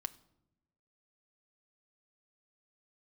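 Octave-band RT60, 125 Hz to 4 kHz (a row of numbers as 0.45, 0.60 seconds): 1.3, 1.2, 0.95, 0.75, 0.55, 0.50 seconds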